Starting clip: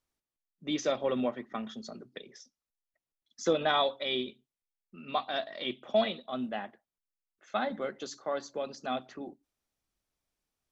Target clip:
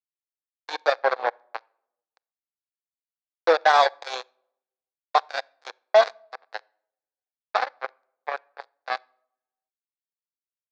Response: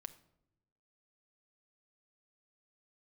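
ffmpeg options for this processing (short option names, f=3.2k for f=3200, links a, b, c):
-filter_complex "[0:a]aeval=exprs='val(0)+0.00282*(sin(2*PI*60*n/s)+sin(2*PI*2*60*n/s)/2+sin(2*PI*3*60*n/s)/3+sin(2*PI*4*60*n/s)/4+sin(2*PI*5*60*n/s)/5)':c=same,acrusher=bits=3:mix=0:aa=0.5,highpass=f=480:w=0.5412,highpass=f=480:w=1.3066,equalizer=f=500:t=q:w=4:g=6,equalizer=f=790:t=q:w=4:g=9,equalizer=f=1.1k:t=q:w=4:g=4,equalizer=f=1.6k:t=q:w=4:g=6,equalizer=f=3k:t=q:w=4:g=-10,equalizer=f=4.3k:t=q:w=4:g=4,lowpass=f=5k:w=0.5412,lowpass=f=5k:w=1.3066,asplit=2[a][b];[1:a]atrim=start_sample=2205[c];[b][c]afir=irnorm=-1:irlink=0,volume=-8.5dB[d];[a][d]amix=inputs=2:normalize=0,volume=4dB"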